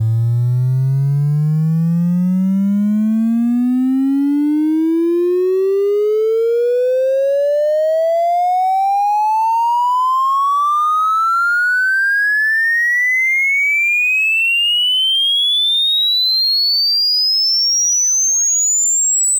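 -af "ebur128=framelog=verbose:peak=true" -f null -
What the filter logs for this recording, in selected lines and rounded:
Integrated loudness:
  I:         -13.3 LUFS
  Threshold: -23.3 LUFS
Loudness range:
  LRA:         4.2 LU
  Threshold: -33.3 LUFS
  LRA low:   -15.4 LUFS
  LRA high:  -11.1 LUFS
True peak:
  Peak:      -10.8 dBFS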